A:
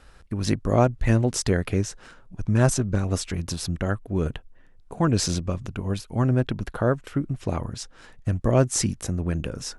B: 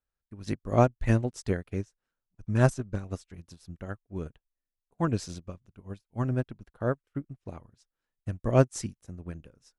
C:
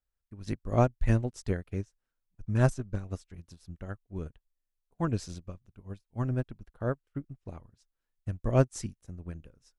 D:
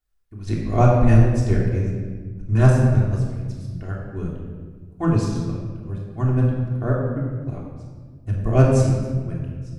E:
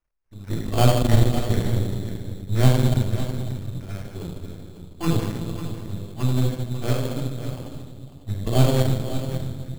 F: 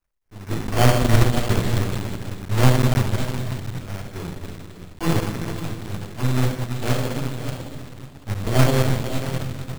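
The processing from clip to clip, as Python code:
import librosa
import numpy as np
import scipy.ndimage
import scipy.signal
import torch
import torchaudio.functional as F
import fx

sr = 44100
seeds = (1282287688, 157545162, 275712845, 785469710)

y1 = fx.upward_expand(x, sr, threshold_db=-41.0, expansion=2.5)
y2 = fx.low_shelf(y1, sr, hz=62.0, db=11.0)
y2 = y2 * 10.0 ** (-3.5 / 20.0)
y3 = fx.room_shoebox(y2, sr, seeds[0], volume_m3=1700.0, walls='mixed', distance_m=3.3)
y3 = y3 * 10.0 ** (3.0 / 20.0)
y4 = np.where(y3 < 0.0, 10.0 ** (-12.0 / 20.0) * y3, y3)
y4 = fx.sample_hold(y4, sr, seeds[1], rate_hz=3800.0, jitter_pct=0)
y4 = y4 + 10.0 ** (-11.5 / 20.0) * np.pad(y4, (int(548 * sr / 1000.0), 0))[:len(y4)]
y5 = fx.block_float(y4, sr, bits=3)
y5 = y5 * 10.0 ** (1.0 / 20.0)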